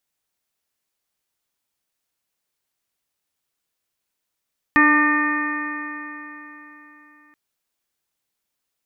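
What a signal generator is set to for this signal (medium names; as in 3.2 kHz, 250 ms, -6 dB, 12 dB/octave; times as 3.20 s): stretched partials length 2.58 s, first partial 296 Hz, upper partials -18.5/-8/-1/-17/3/-14/-10.5 dB, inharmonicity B 0.0013, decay 3.74 s, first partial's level -16 dB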